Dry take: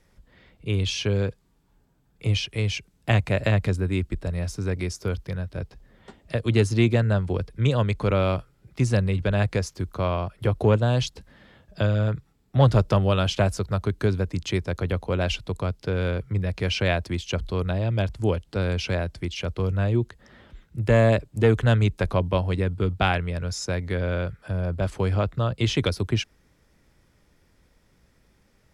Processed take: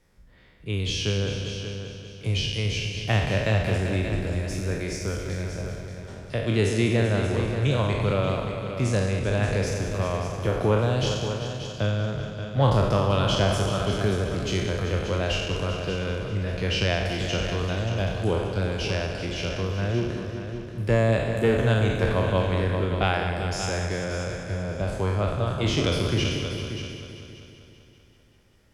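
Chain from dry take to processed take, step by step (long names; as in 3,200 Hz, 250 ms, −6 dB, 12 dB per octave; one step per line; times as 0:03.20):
peak hold with a decay on every bin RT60 1.04 s
echo machine with several playback heads 194 ms, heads all three, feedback 41%, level −11.5 dB
level −4 dB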